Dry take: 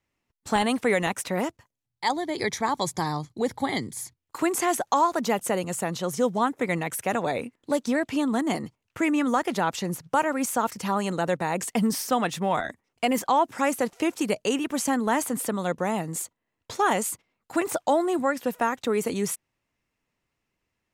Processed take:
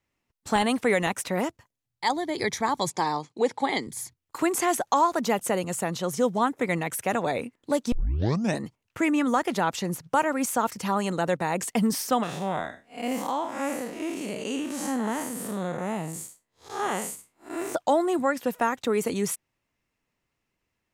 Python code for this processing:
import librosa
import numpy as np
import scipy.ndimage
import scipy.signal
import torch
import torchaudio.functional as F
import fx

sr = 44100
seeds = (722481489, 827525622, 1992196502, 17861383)

y = fx.cabinet(x, sr, low_hz=240.0, low_slope=12, high_hz=9200.0, hz=(460.0, 900.0, 2600.0), db=(4, 5, 7), at=(2.9, 3.87))
y = fx.spec_blur(y, sr, span_ms=153.0, at=(12.23, 17.75))
y = fx.edit(y, sr, fx.tape_start(start_s=7.92, length_s=0.71), tone=tone)